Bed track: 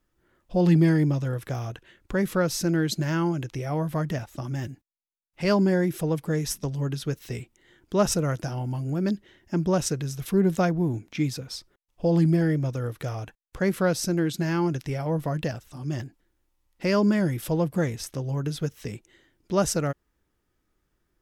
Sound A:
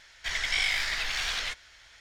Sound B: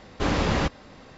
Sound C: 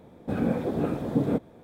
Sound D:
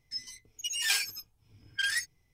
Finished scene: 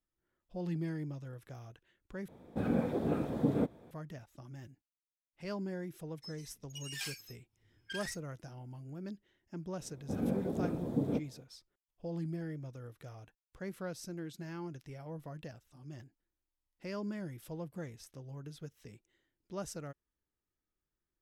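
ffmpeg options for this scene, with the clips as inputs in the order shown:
ffmpeg -i bed.wav -i cue0.wav -i cue1.wav -i cue2.wav -i cue3.wav -filter_complex "[3:a]asplit=2[link_01][link_02];[0:a]volume=-18dB[link_03];[4:a]asplit=2[link_04][link_05];[link_05]adelay=37,volume=-13dB[link_06];[link_04][link_06]amix=inputs=2:normalize=0[link_07];[link_02]equalizer=frequency=1800:width_type=o:width=2.4:gain=-7.5[link_08];[link_03]asplit=2[link_09][link_10];[link_09]atrim=end=2.284[link_11];[link_01]atrim=end=1.63,asetpts=PTS-STARTPTS,volume=-5.5dB[link_12];[link_10]atrim=start=3.906[link_13];[link_07]atrim=end=2.33,asetpts=PTS-STARTPTS,volume=-13.5dB,afade=type=in:duration=0.004:curve=hsin,afade=type=out:start_time=2.326:duration=0.004:curve=hsin,adelay=6110[link_14];[link_08]atrim=end=1.63,asetpts=PTS-STARTPTS,volume=-7dB,afade=type=in:duration=0.004:curve=hsin,afade=type=out:start_time=1.626:duration=0.004:curve=hsin,adelay=9810[link_15];[link_11][link_12]acrossfade=duration=0.004:curve1=hsin:curve2=hsin[link_16];[link_16][link_13]acrossfade=duration=0.004:curve1=hsin:curve2=hsin[link_17];[link_17][link_14][link_15]amix=inputs=3:normalize=0" out.wav

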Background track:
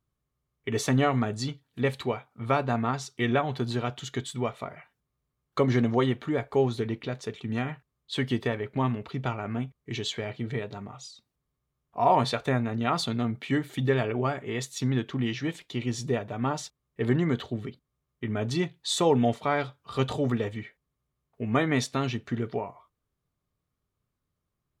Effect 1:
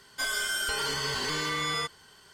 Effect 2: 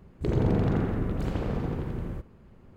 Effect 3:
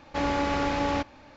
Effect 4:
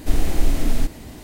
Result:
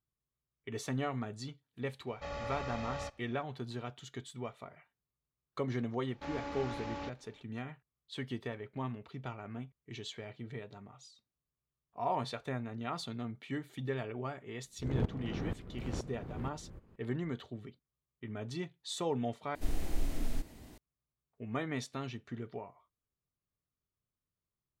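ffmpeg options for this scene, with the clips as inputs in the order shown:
ffmpeg -i bed.wav -i cue0.wav -i cue1.wav -i cue2.wav -i cue3.wav -filter_complex "[3:a]asplit=2[link_01][link_02];[0:a]volume=-12dB[link_03];[link_01]aecho=1:1:1.6:0.92[link_04];[2:a]aeval=exprs='val(0)*pow(10,-19*if(lt(mod(-2.1*n/s,1),2*abs(-2.1)/1000),1-mod(-2.1*n/s,1)/(2*abs(-2.1)/1000),(mod(-2.1*n/s,1)-2*abs(-2.1)/1000)/(1-2*abs(-2.1)/1000))/20)':channel_layout=same[link_05];[link_03]asplit=2[link_06][link_07];[link_06]atrim=end=19.554[link_08];[4:a]atrim=end=1.23,asetpts=PTS-STARTPTS,volume=-15dB[link_09];[link_07]atrim=start=20.776[link_10];[link_04]atrim=end=1.36,asetpts=PTS-STARTPTS,volume=-16dB,afade=type=in:duration=0.004:curve=hsin,afade=type=out:start_time=1.356:duration=0.004:curve=hsin,adelay=2070[link_11];[link_02]atrim=end=1.36,asetpts=PTS-STARTPTS,volume=-15dB,afade=type=in:duration=0.004:curve=hsin,afade=type=out:start_time=1.356:duration=0.004:curve=hsin,adelay=6070[link_12];[link_05]atrim=end=2.76,asetpts=PTS-STARTPTS,volume=-6dB,afade=type=in:duration=0.004:curve=hsin,afade=type=out:start_time=2.756:duration=0.004:curve=hsin,adelay=14580[link_13];[link_08][link_09]acrossfade=duration=0.004:curve1=hsin:curve2=hsin[link_14];[link_14][link_10]acrossfade=duration=0.004:curve1=hsin:curve2=hsin[link_15];[link_15][link_11][link_12][link_13]amix=inputs=4:normalize=0" out.wav

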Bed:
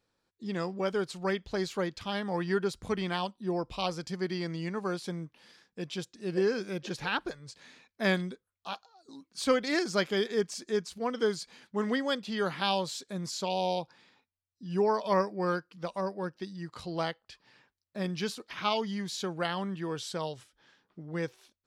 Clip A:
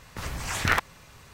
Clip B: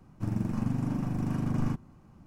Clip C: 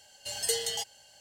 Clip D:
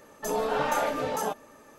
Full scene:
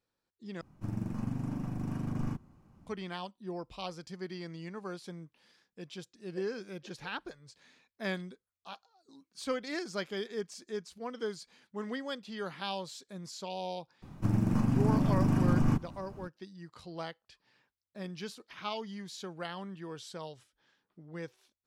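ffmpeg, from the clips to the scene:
ffmpeg -i bed.wav -i cue0.wav -i cue1.wav -filter_complex "[2:a]asplit=2[link_01][link_02];[0:a]volume=-8dB[link_03];[link_02]alimiter=level_in=23.5dB:limit=-1dB:release=50:level=0:latency=1[link_04];[link_03]asplit=2[link_05][link_06];[link_05]atrim=end=0.614[link_07];[link_01]atrim=end=2.26,asetpts=PTS-STARTPTS,volume=-5.5dB[link_08];[link_06]atrim=start=2.866[link_09];[link_04]atrim=end=2.26,asetpts=PTS-STARTPTS,volume=-17.5dB,afade=type=in:duration=0.004:curve=hsin,afade=type=out:start_time=2.256:duration=0.004:curve=hsin,adelay=14020[link_10];[link_07][link_08]acrossfade=duration=0.004:curve1=hsin:curve2=hsin[link_11];[link_11][link_09]acrossfade=duration=0.004:curve1=hsin:curve2=hsin[link_12];[link_12][link_10]amix=inputs=2:normalize=0" out.wav

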